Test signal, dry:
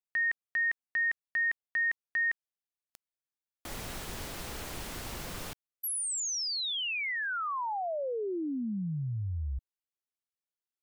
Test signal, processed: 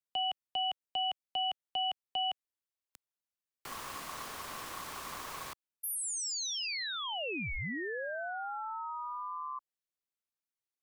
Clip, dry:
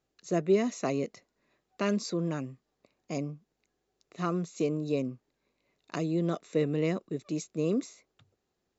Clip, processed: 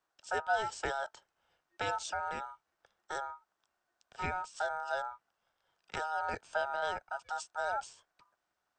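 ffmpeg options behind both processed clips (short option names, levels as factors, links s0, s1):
-filter_complex "[0:a]aeval=exprs='val(0)*sin(2*PI*1100*n/s)':c=same,acrossover=split=130|900|2100[s0][s1][s2][s3];[s2]acompressor=threshold=0.00447:ratio=6:attack=96:release=133[s4];[s0][s1][s4][s3]amix=inputs=4:normalize=0"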